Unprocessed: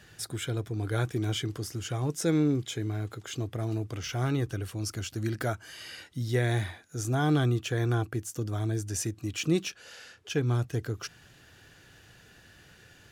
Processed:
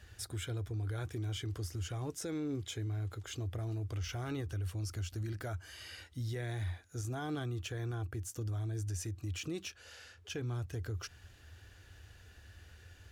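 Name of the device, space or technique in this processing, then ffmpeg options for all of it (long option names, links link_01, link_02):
car stereo with a boomy subwoofer: -af "lowshelf=frequency=110:width_type=q:width=3:gain=9,alimiter=level_in=1.5dB:limit=-24dB:level=0:latency=1:release=82,volume=-1.5dB,volume=-5.5dB"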